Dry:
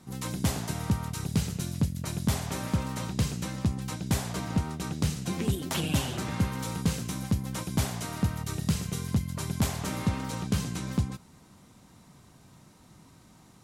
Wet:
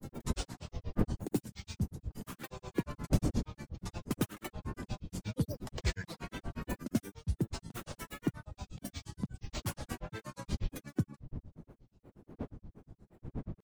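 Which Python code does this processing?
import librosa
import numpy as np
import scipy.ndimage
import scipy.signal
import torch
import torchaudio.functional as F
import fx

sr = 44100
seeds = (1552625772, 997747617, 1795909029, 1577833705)

y = fx.bin_expand(x, sr, power=1.5)
y = fx.dmg_wind(y, sr, seeds[0], corner_hz=180.0, level_db=-35.0)
y = fx.granulator(y, sr, seeds[1], grain_ms=100.0, per_s=8.4, spray_ms=100.0, spread_st=12)
y = F.gain(torch.from_numpy(y), -1.5).numpy()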